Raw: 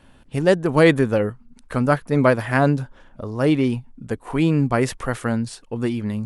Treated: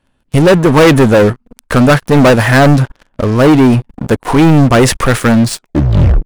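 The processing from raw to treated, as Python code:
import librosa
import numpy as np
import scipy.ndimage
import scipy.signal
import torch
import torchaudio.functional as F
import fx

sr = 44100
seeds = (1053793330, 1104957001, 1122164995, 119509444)

y = fx.tape_stop_end(x, sr, length_s=0.73)
y = fx.leveller(y, sr, passes=5)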